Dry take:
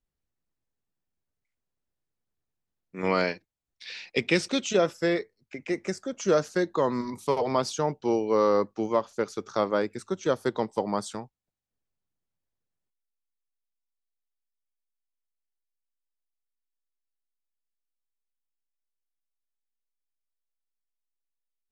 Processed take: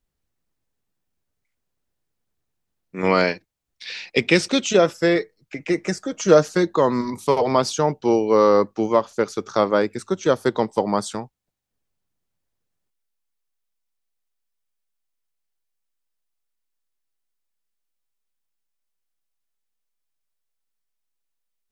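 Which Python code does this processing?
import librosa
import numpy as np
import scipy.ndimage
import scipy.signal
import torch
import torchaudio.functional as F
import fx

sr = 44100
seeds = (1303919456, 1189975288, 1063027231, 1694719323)

y = fx.comb(x, sr, ms=6.4, depth=0.47, at=(5.15, 6.67))
y = y * 10.0 ** (7.0 / 20.0)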